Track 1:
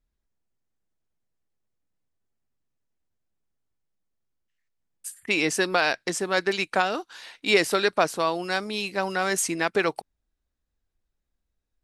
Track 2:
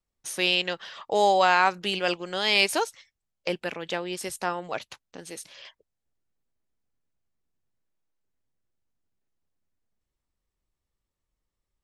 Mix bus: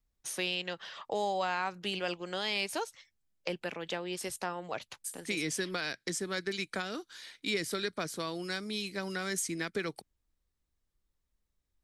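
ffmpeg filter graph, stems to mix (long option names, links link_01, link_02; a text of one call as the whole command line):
ffmpeg -i stem1.wav -i stem2.wav -filter_complex "[0:a]equalizer=frequency=810:width_type=o:width=1.4:gain=-13,bandreject=frequency=2700:width=7.5,volume=-2.5dB[link_01];[1:a]volume=-3.5dB[link_02];[link_01][link_02]amix=inputs=2:normalize=0,acrossover=split=190[link_03][link_04];[link_04]acompressor=threshold=-33dB:ratio=2.5[link_05];[link_03][link_05]amix=inputs=2:normalize=0" out.wav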